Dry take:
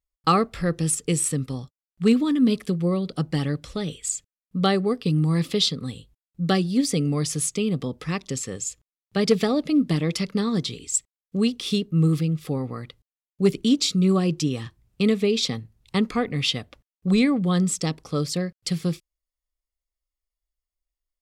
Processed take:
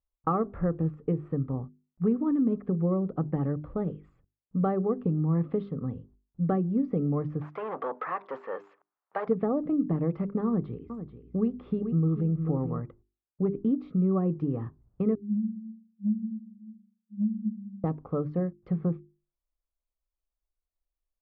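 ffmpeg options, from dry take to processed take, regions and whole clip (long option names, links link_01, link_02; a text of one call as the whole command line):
ffmpeg -i in.wav -filter_complex "[0:a]asettb=1/sr,asplit=3[link_01][link_02][link_03];[link_01]atrim=end=7.414[link_04];[link_02]atrim=start=7.41:end=9.28,asetpts=PTS-STARTPTS,afade=type=in:duration=0.004:curve=qsin,afade=type=out:start_time=1.866:duration=0.004:curve=qsin,asplit=2[link_05][link_06];[link_06]highpass=frequency=720:poles=1,volume=27dB,asoftclip=type=tanh:threshold=-10.5dB[link_07];[link_05][link_07]amix=inputs=2:normalize=0,lowpass=frequency=3500:poles=1,volume=-6dB,highpass=790,equalizer=frequency=8900:width=0.36:gain=6.5[link_08];[link_03]atrim=start=9.276[link_09];[link_04][link_08]acrossfade=duration=0.004:curve1=hsin:curve2=qsin[link_10];[link_10][link_09]acrossfade=duration=0.004:curve1=qsin:curve2=hsin,asettb=1/sr,asplit=3[link_11][link_12][link_13];[link_11]atrim=end=10.464[link_14];[link_12]atrim=start=10.46:end=12.83,asetpts=PTS-STARTPTS,afade=type=in:duration=0.004:curve=qsin,afade=type=out:start_time=2.366:duration=0.004:curve=qsin,aeval=exprs='val(0)+0.00224*(sin(2*PI*60*n/s)+sin(2*PI*2*60*n/s)/2+sin(2*PI*3*60*n/s)/3+sin(2*PI*4*60*n/s)/4+sin(2*PI*5*60*n/s)/5)':channel_layout=same,aecho=1:1:437:0.282,atrim=end_sample=104517[link_15];[link_13]atrim=start=12.826[link_16];[link_14][link_15]acrossfade=duration=0.004:curve1=hsin:curve2=qsin[link_17];[link_17][link_16]acrossfade=duration=0.004:curve1=qsin:curve2=hsin,asettb=1/sr,asplit=3[link_18][link_19][link_20];[link_18]atrim=end=15.154[link_21];[link_19]atrim=start=15.15:end=17.84,asetpts=PTS-STARTPTS,afade=type=in:duration=0.004:curve=qsin,afade=type=out:start_time=2.686:duration=0.004:curve=qsin,aecho=1:1:4.9:0.54,atrim=end_sample=118629,acrusher=bits=9:dc=4:mix=0:aa=0.000001,asuperpass=centerf=210:order=20:qfactor=7.8[link_22];[link_20]atrim=start=17.836[link_23];[link_21][link_22]acrossfade=duration=0.004:curve1=hsin:curve2=qsin[link_24];[link_24][link_23]acrossfade=duration=0.004:curve1=qsin:curve2=hsin,acompressor=threshold=-23dB:ratio=3,lowpass=frequency=1200:width=0.5412,lowpass=frequency=1200:width=1.3066,bandreject=frequency=50:width_type=h:width=6,bandreject=frequency=100:width_type=h:width=6,bandreject=frequency=150:width_type=h:width=6,bandreject=frequency=200:width_type=h:width=6,bandreject=frequency=250:width_type=h:width=6,bandreject=frequency=300:width_type=h:width=6,bandreject=frequency=350:width_type=h:width=6,bandreject=frequency=400:width_type=h:width=6" out.wav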